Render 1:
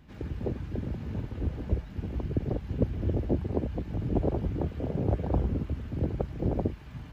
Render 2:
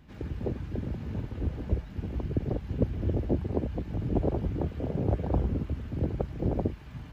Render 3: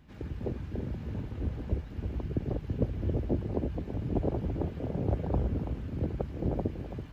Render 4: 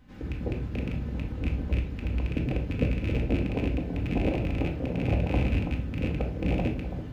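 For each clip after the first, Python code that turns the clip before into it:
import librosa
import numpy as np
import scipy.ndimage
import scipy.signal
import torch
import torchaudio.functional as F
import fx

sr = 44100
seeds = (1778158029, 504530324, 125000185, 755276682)

y1 = x
y2 = y1 + 10.0 ** (-9.5 / 20.0) * np.pad(y1, (int(331 * sr / 1000.0), 0))[:len(y1)]
y2 = y2 * librosa.db_to_amplitude(-2.5)
y3 = fx.rattle_buzz(y2, sr, strikes_db=-29.0, level_db=-27.0)
y3 = fx.room_shoebox(y3, sr, seeds[0], volume_m3=570.0, walls='furnished', distance_m=2.0)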